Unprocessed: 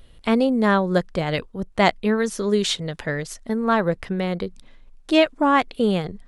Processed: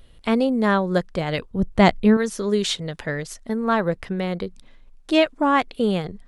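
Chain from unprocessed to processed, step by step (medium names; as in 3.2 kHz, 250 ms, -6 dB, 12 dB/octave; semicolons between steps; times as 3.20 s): 1.51–2.17 s: bass shelf 300 Hz +11.5 dB; trim -1 dB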